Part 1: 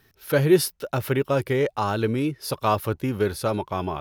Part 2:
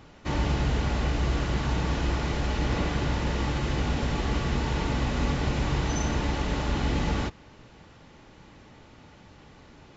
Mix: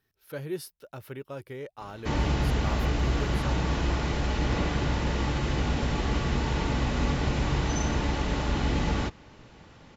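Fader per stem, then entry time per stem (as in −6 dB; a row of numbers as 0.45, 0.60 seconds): −16.5, 0.0 decibels; 0.00, 1.80 seconds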